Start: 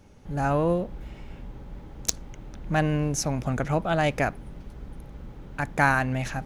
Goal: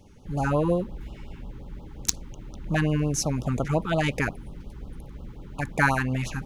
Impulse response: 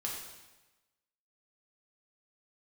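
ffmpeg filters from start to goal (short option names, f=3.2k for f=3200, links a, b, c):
-af "afftfilt=real='re*(1-between(b*sr/1024,560*pow(2000/560,0.5+0.5*sin(2*PI*5.6*pts/sr))/1.41,560*pow(2000/560,0.5+0.5*sin(2*PI*5.6*pts/sr))*1.41))':imag='im*(1-between(b*sr/1024,560*pow(2000/560,0.5+0.5*sin(2*PI*5.6*pts/sr))/1.41,560*pow(2000/560,0.5+0.5*sin(2*PI*5.6*pts/sr))*1.41))':win_size=1024:overlap=0.75,volume=1dB"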